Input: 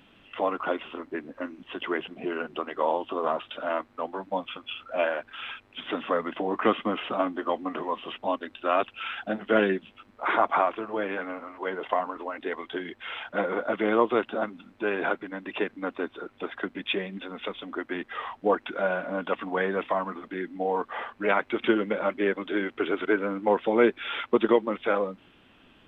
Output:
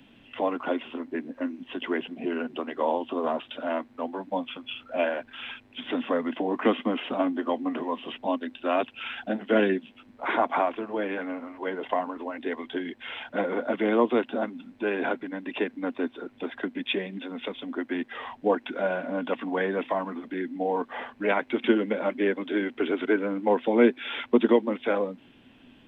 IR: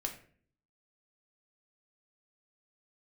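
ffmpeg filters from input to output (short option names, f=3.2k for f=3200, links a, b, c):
-filter_complex "[0:a]equalizer=f=125:t=o:w=0.33:g=6,equalizer=f=250:t=o:w=0.33:g=10,equalizer=f=1.25k:t=o:w=0.33:g=-8,acrossover=split=160|390|1300[a][b][c][d];[a]acompressor=threshold=-57dB:ratio=6[e];[e][b][c][d]amix=inputs=4:normalize=0"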